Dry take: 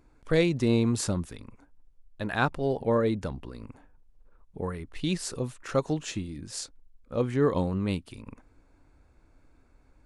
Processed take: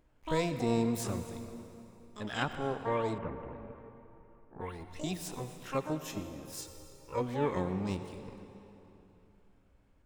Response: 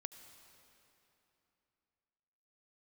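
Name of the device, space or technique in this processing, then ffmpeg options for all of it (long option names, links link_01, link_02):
shimmer-style reverb: -filter_complex "[0:a]asplit=2[link_01][link_02];[link_02]asetrate=88200,aresample=44100,atempo=0.5,volume=-5dB[link_03];[link_01][link_03]amix=inputs=2:normalize=0[link_04];[1:a]atrim=start_sample=2205[link_05];[link_04][link_05]afir=irnorm=-1:irlink=0,bandreject=frequency=4500:width=12,asettb=1/sr,asplit=3[link_06][link_07][link_08];[link_06]atrim=end=3.184[link_09];[link_07]atrim=start=3.18:end=4.6,asetpts=PTS-STARTPTS,afade=type=in:duration=0.004:curve=qsin,afade=type=out:start_time=1.416:duration=0.004:curve=qsin,lowpass=frequency=2300:width=0.5412,lowpass=frequency=2300:width=1.3066[link_10];[link_08]atrim=start=4.596[link_11];[link_09][link_10]acrossfade=duration=0.004:curve1=hsin:curve2=qsin[link_12];[link_12][link_11]acrossfade=duration=0.004:curve1=qsin:curve2=hsin,asettb=1/sr,asplit=3[link_13][link_14][link_15];[link_13]atrim=end=6.584[link_16];[link_14]atrim=start=6.58:end=7.21,asetpts=PTS-STARTPTS,afade=type=in:duration=0.004:curve=qsin,afade=type=out:start_time=0.626:duration=0.004:curve=qsin,aecho=1:1:2.2:0.67,atrim=end_sample=27783[link_17];[link_15]atrim=start=7.206[link_18];[link_16][link_17]acrossfade=duration=0.004:curve1=hsin:curve2=qsin[link_19];[link_19][link_18]acrossfade=duration=0.004:curve1=qsin:curve2=hsin,volume=-4dB"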